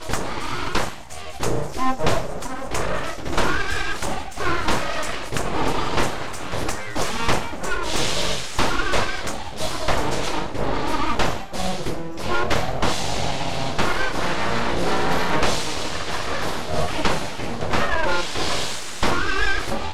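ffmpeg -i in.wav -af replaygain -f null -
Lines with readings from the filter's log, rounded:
track_gain = +5.6 dB
track_peak = 0.401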